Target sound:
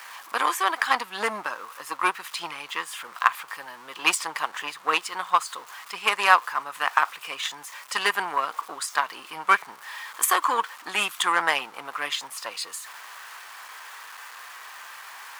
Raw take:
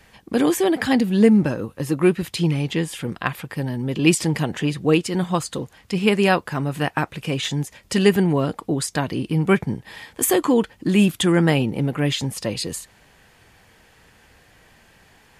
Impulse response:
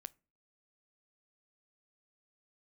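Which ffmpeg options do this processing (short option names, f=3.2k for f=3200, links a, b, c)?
-af "aeval=exprs='val(0)+0.5*0.0282*sgn(val(0))':c=same,aeval=exprs='0.668*(cos(1*acos(clip(val(0)/0.668,-1,1)))-cos(1*PI/2))+0.0531*(cos(7*acos(clip(val(0)/0.668,-1,1)))-cos(7*PI/2))':c=same,highpass=f=1.1k:t=q:w=3.5,volume=-1dB"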